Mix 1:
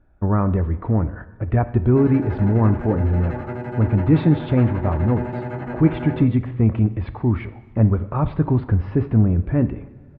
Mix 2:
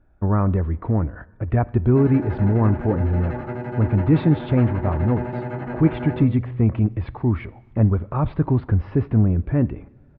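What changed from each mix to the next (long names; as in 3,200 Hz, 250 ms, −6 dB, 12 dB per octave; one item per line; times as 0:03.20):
speech: send −8.0 dB
background: add high-frequency loss of the air 52 metres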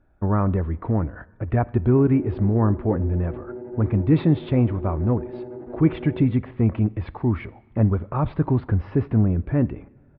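speech: add low-shelf EQ 110 Hz −4.5 dB
background: add resonant band-pass 370 Hz, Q 3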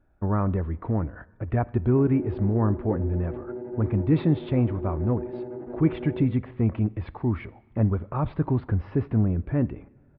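speech −3.5 dB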